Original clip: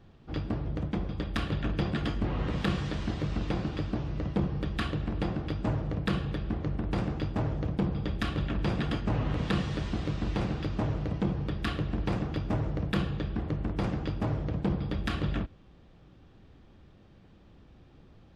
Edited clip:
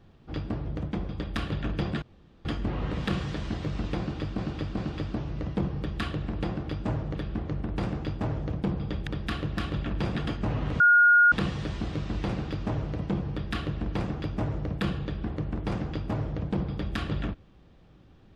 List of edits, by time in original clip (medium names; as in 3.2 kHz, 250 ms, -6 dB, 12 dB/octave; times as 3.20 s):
2.02 s: insert room tone 0.43 s
3.56–3.95 s: loop, 3 plays
5.94–6.30 s: delete
9.44 s: add tone 1.43 kHz -14.5 dBFS 0.52 s
11.43–11.94 s: copy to 8.22 s